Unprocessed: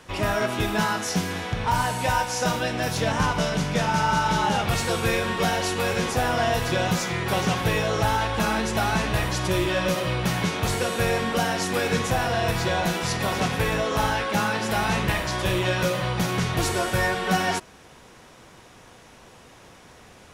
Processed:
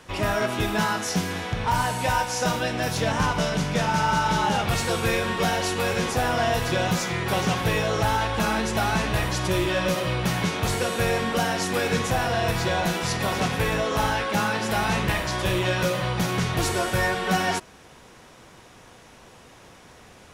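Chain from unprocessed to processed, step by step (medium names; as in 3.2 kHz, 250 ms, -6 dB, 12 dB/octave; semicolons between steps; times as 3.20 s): hard clipper -16 dBFS, distortion -27 dB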